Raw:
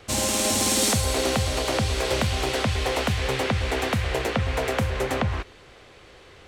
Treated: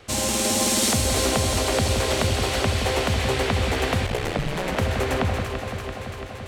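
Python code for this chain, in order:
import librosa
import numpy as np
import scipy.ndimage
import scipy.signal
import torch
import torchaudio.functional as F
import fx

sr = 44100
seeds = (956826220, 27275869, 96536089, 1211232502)

y = fx.echo_alternate(x, sr, ms=169, hz=1000.0, feedback_pct=85, wet_db=-5.5)
y = fx.ring_mod(y, sr, carrier_hz=fx.line((4.06, 23.0), (4.75, 130.0)), at=(4.06, 4.75), fade=0.02)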